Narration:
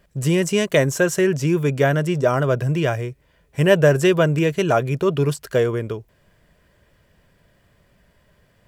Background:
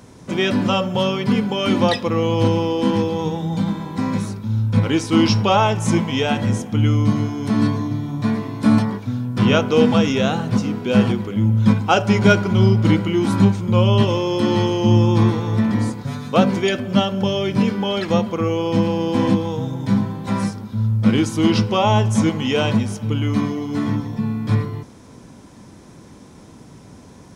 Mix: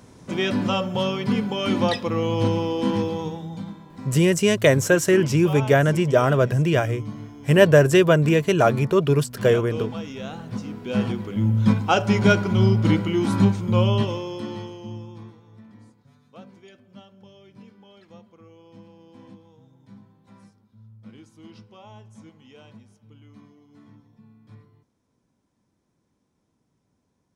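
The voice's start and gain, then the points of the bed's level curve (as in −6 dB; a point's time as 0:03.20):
3.90 s, +0.5 dB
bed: 0:03.11 −4.5 dB
0:03.83 −16.5 dB
0:10.10 −16.5 dB
0:11.48 −3.5 dB
0:13.82 −3.5 dB
0:15.41 −29.5 dB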